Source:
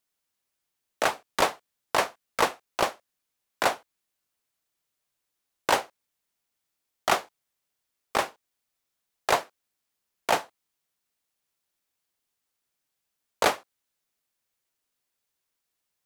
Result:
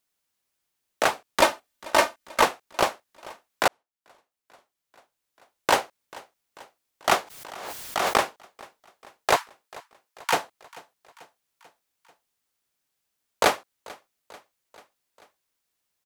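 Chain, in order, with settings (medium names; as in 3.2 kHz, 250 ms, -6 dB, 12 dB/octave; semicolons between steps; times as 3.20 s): 1.41–2.43 s: comb 3.3 ms, depth 81%; 9.36–10.33 s: Chebyshev high-pass 910 Hz, order 5; feedback delay 440 ms, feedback 59%, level -22 dB; 3.68–5.75 s: fade in linear; 7.13–8.22 s: swell ahead of each attack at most 33 dB/s; trim +2.5 dB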